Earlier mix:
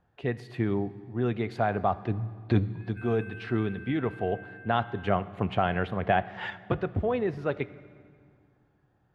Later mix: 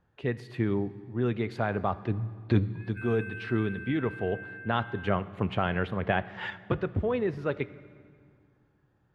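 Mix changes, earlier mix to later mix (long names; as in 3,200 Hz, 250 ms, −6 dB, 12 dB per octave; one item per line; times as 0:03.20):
background +4.5 dB
master: add parametric band 720 Hz −7.5 dB 0.28 octaves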